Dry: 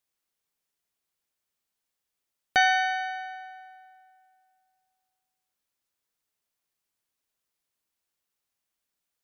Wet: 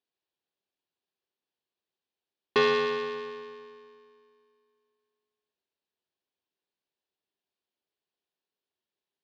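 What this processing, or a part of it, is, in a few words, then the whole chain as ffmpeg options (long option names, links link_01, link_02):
ring modulator pedal into a guitar cabinet: -af "aeval=exprs='val(0)*sgn(sin(2*PI*330*n/s))':channel_layout=same,highpass=90,equalizer=frequency=120:width_type=q:width=4:gain=-7,equalizer=frequency=390:width_type=q:width=4:gain=8,equalizer=frequency=1300:width_type=q:width=4:gain=-7,equalizer=frequency=2100:width_type=q:width=4:gain=-7,lowpass=frequency=4300:width=0.5412,lowpass=frequency=4300:width=1.3066,volume=-2dB"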